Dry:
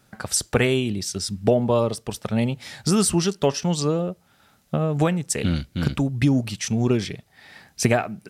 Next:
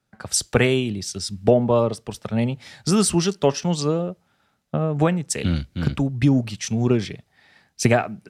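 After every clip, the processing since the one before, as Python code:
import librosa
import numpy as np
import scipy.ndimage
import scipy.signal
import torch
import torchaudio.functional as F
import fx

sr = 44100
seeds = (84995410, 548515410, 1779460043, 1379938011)

y = fx.high_shelf(x, sr, hz=11000.0, db=-11.0)
y = fx.band_widen(y, sr, depth_pct=40)
y = y * 10.0 ** (1.0 / 20.0)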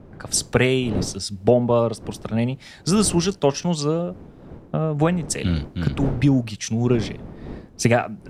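y = fx.dmg_wind(x, sr, seeds[0], corner_hz=280.0, level_db=-35.0)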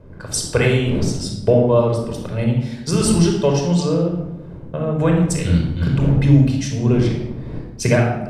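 y = fx.room_shoebox(x, sr, seeds[1], volume_m3=3500.0, walls='furnished', distance_m=5.1)
y = y * 10.0 ** (-3.0 / 20.0)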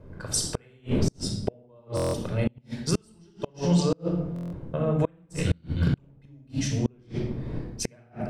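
y = fx.gate_flip(x, sr, shuts_db=-8.0, range_db=-35)
y = fx.buffer_glitch(y, sr, at_s=(1.95, 4.34), block=1024, repeats=7)
y = y * 10.0 ** (-4.0 / 20.0)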